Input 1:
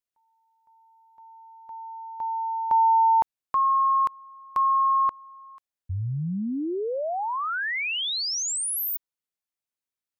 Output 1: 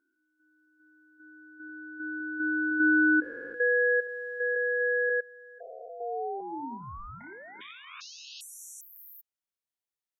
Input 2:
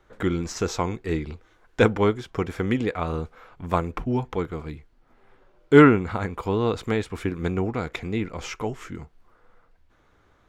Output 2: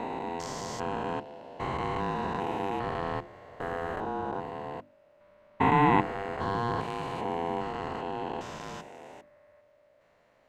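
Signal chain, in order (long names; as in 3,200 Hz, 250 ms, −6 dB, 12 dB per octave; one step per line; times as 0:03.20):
spectrum averaged block by block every 400 ms
ring modulation 590 Hz
mains-hum notches 50/100/150/200/250/300/350 Hz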